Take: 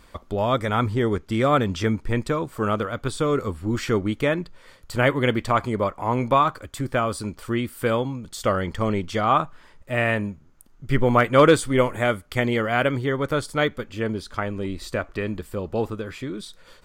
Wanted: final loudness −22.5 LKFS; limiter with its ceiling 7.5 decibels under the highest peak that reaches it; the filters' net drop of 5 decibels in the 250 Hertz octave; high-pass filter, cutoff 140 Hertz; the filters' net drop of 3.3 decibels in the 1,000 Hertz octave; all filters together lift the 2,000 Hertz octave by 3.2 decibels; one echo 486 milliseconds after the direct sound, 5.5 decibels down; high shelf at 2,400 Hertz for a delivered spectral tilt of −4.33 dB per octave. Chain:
high-pass filter 140 Hz
parametric band 250 Hz −5.5 dB
parametric band 1,000 Hz −6.5 dB
parametric band 2,000 Hz +4.5 dB
high-shelf EQ 2,400 Hz +3.5 dB
brickwall limiter −11.5 dBFS
single-tap delay 486 ms −5.5 dB
level +3.5 dB

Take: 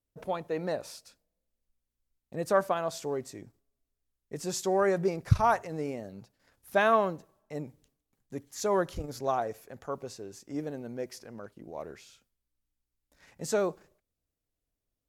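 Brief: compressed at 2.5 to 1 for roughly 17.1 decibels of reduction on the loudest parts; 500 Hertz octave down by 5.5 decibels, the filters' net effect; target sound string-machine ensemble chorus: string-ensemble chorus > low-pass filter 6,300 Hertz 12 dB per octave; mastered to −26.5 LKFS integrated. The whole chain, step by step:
parametric band 500 Hz −7.5 dB
downward compressor 2.5 to 1, threshold −44 dBFS
string-ensemble chorus
low-pass filter 6,300 Hz 12 dB per octave
level +22.5 dB

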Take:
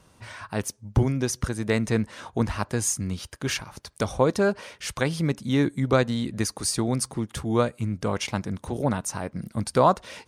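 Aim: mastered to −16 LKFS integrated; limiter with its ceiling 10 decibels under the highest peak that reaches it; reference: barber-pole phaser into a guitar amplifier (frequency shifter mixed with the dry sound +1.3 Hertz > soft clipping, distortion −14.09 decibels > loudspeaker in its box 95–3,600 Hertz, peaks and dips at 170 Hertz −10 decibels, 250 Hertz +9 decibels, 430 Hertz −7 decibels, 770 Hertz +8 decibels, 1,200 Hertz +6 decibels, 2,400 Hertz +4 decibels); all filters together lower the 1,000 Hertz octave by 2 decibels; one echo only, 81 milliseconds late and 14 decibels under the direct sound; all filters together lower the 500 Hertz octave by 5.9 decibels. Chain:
parametric band 500 Hz −3.5 dB
parametric band 1,000 Hz −8.5 dB
brickwall limiter −19.5 dBFS
single-tap delay 81 ms −14 dB
frequency shifter mixed with the dry sound +1.3 Hz
soft clipping −27.5 dBFS
loudspeaker in its box 95–3,600 Hz, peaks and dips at 170 Hz −10 dB, 250 Hz +9 dB, 430 Hz −7 dB, 770 Hz +8 dB, 1,200 Hz +6 dB, 2,400 Hz +4 dB
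level +20 dB

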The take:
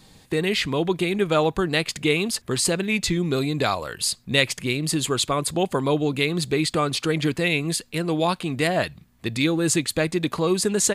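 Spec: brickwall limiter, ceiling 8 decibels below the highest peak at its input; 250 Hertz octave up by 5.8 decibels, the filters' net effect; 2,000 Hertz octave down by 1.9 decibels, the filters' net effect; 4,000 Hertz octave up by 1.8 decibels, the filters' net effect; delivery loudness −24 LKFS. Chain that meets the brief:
parametric band 250 Hz +8.5 dB
parametric band 2,000 Hz −3.5 dB
parametric band 4,000 Hz +3 dB
level −2 dB
brickwall limiter −14 dBFS

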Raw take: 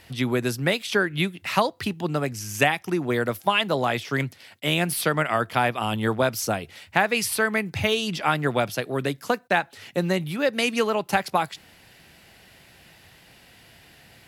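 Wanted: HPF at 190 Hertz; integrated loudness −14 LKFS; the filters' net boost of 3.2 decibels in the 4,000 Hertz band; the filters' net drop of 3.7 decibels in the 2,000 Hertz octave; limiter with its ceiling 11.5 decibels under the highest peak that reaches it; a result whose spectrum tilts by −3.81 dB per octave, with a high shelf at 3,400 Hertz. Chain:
high-pass filter 190 Hz
parametric band 2,000 Hz −7.5 dB
high-shelf EQ 3,400 Hz +3.5 dB
parametric band 4,000 Hz +5 dB
level +14.5 dB
brickwall limiter −2.5 dBFS

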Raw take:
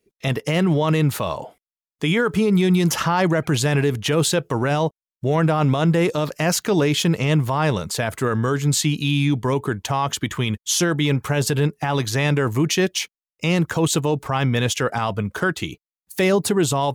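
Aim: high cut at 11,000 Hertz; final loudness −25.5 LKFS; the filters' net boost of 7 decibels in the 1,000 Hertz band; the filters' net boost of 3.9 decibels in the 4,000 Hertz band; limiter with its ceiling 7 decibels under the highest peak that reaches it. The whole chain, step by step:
low-pass filter 11,000 Hz
parametric band 1,000 Hz +8.5 dB
parametric band 4,000 Hz +4.5 dB
level −4.5 dB
brickwall limiter −15.5 dBFS

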